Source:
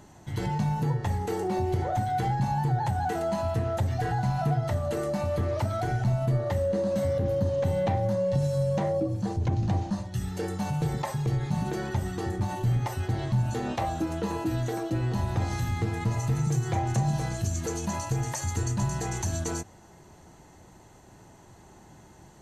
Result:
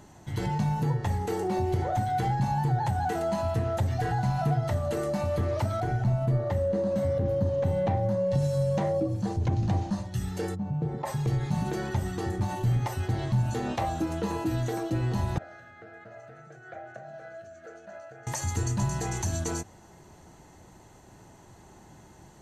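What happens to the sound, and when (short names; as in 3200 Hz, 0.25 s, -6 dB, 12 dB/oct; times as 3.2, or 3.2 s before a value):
5.8–8.31 high shelf 2200 Hz -7.5 dB
10.54–11.05 band-pass 100 Hz -> 520 Hz, Q 0.62
15.38–18.27 double band-pass 970 Hz, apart 1.2 oct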